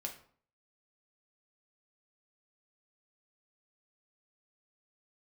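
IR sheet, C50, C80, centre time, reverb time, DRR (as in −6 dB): 10.0 dB, 14.5 dB, 16 ms, 0.50 s, 1.5 dB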